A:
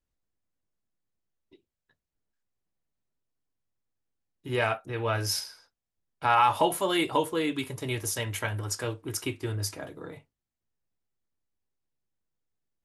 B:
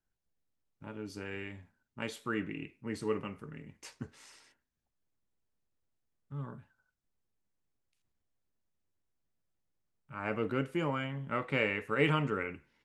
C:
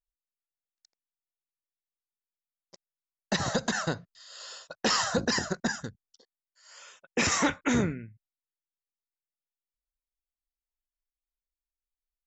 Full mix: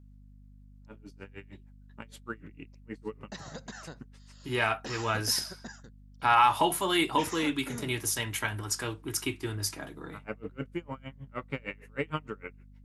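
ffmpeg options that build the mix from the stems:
ffmpeg -i stem1.wav -i stem2.wav -i stem3.wav -filter_complex "[0:a]highpass=140,equalizer=frequency=530:width=2.3:gain=-10,volume=1.5dB[link_01];[1:a]aeval=exprs='val(0)*pow(10,-35*(0.5-0.5*cos(2*PI*6.5*n/s))/20)':channel_layout=same,volume=0dB[link_02];[2:a]volume=-15dB[link_03];[link_01][link_02][link_03]amix=inputs=3:normalize=0,aeval=exprs='val(0)+0.00251*(sin(2*PI*50*n/s)+sin(2*PI*2*50*n/s)/2+sin(2*PI*3*50*n/s)/3+sin(2*PI*4*50*n/s)/4+sin(2*PI*5*50*n/s)/5)':channel_layout=same" out.wav

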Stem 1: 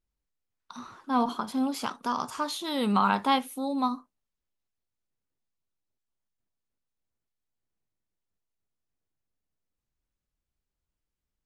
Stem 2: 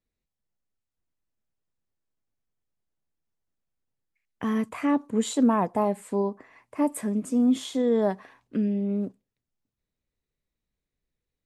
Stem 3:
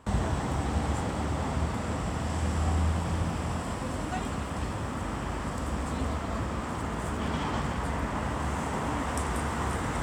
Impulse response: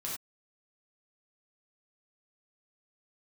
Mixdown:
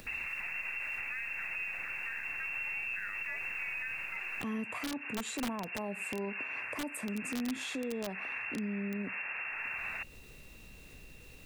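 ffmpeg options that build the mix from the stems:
-filter_complex "[0:a]aeval=exprs='val(0)+0.00316*(sin(2*PI*60*n/s)+sin(2*PI*2*60*n/s)/2+sin(2*PI*3*60*n/s)/3+sin(2*PI*4*60*n/s)/4+sin(2*PI*5*60*n/s)/5)':channel_layout=same,volume=-8.5dB[link_01];[1:a]acompressor=mode=upward:threshold=-24dB:ratio=2.5,volume=-2dB[link_02];[2:a]bandreject=frequency=60:width_type=h:width=6,bandreject=frequency=120:width_type=h:width=6,bandreject=frequency=180:width_type=h:width=6,bandreject=frequency=240:width_type=h:width=6,bandreject=frequency=300:width_type=h:width=6,volume=-6.5dB[link_03];[link_01][link_03]amix=inputs=2:normalize=0,lowpass=frequency=2400:width_type=q:width=0.5098,lowpass=frequency=2400:width_type=q:width=0.6013,lowpass=frequency=2400:width_type=q:width=0.9,lowpass=frequency=2400:width_type=q:width=2.563,afreqshift=-2800,alimiter=level_in=4dB:limit=-24dB:level=0:latency=1,volume=-4dB,volume=0dB[link_04];[link_02][link_04]amix=inputs=2:normalize=0,acrossover=split=170[link_05][link_06];[link_06]acompressor=threshold=-26dB:ratio=6[link_07];[link_05][link_07]amix=inputs=2:normalize=0,aeval=exprs='(mod(10*val(0)+1,2)-1)/10':channel_layout=same,alimiter=level_in=5.5dB:limit=-24dB:level=0:latency=1:release=141,volume=-5.5dB"

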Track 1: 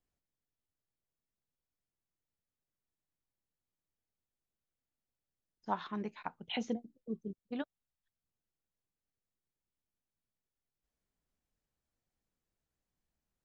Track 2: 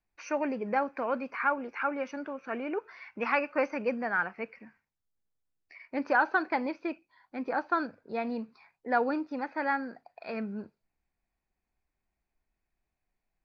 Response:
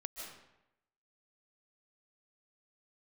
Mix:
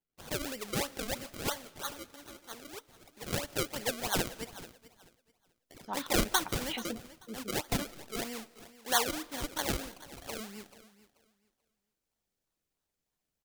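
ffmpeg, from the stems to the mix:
-filter_complex "[0:a]adelay=200,volume=-5.5dB[link_01];[1:a]lowshelf=frequency=250:gain=-12,bandreject=frequency=650:width=12,acrusher=samples=34:mix=1:aa=0.000001:lfo=1:lforange=34:lforate=3.1,volume=3dB,afade=type=out:start_time=1:duration=0.75:silence=0.421697,afade=type=in:start_time=3.24:duration=0.31:silence=0.375837,asplit=3[link_02][link_03][link_04];[link_03]volume=-15.5dB[link_05];[link_04]volume=-16dB[link_06];[2:a]atrim=start_sample=2205[link_07];[link_05][link_07]afir=irnorm=-1:irlink=0[link_08];[link_06]aecho=0:1:435|870|1305|1740:1|0.22|0.0484|0.0106[link_09];[link_01][link_02][link_08][link_09]amix=inputs=4:normalize=0,highshelf=frequency=2300:gain=11"

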